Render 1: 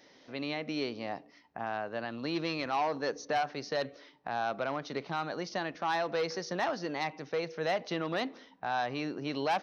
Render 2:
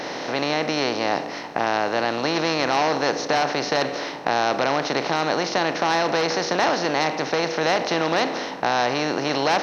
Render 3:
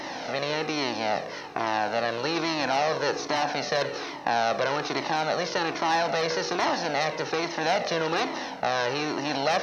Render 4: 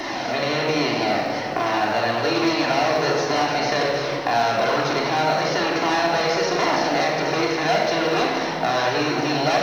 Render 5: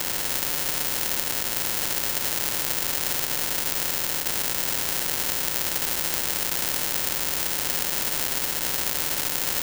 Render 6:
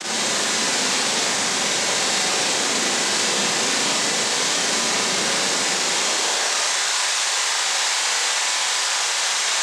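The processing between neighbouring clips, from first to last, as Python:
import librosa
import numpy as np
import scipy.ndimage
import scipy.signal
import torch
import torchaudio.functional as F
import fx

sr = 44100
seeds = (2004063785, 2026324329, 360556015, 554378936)

y1 = fx.bin_compress(x, sr, power=0.4)
y1 = fx.dynamic_eq(y1, sr, hz=5800.0, q=0.9, threshold_db=-46.0, ratio=4.0, max_db=4)
y1 = y1 * librosa.db_to_amplitude(5.0)
y2 = fx.comb_cascade(y1, sr, direction='falling', hz=1.2)
y3 = fx.room_shoebox(y2, sr, seeds[0], volume_m3=2100.0, walls='mixed', distance_m=3.2)
y3 = fx.quant_companded(y3, sr, bits=8)
y3 = fx.band_squash(y3, sr, depth_pct=40)
y4 = fx.sample_hold(y3, sr, seeds[1], rate_hz=1200.0, jitter_pct=0)
y4 = fx.spectral_comp(y4, sr, ratio=10.0)
y4 = y4 * librosa.db_to_amplitude(7.0)
y5 = fx.noise_vocoder(y4, sr, seeds[2], bands=6)
y5 = fx.filter_sweep_highpass(y5, sr, from_hz=200.0, to_hz=840.0, start_s=5.45, end_s=6.75, q=0.91)
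y5 = fx.rev_schroeder(y5, sr, rt60_s=1.1, comb_ms=31, drr_db=-9.0)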